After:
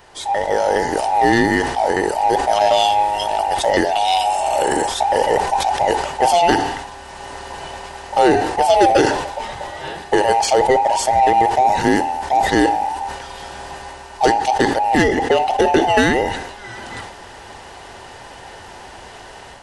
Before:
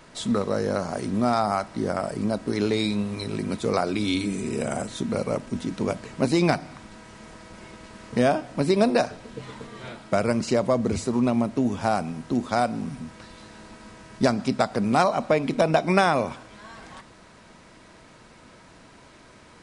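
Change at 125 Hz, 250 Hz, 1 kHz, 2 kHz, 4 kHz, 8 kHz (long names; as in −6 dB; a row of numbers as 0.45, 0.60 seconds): −1.0, +2.5, +13.5, +10.5, +10.5, +11.5 decibels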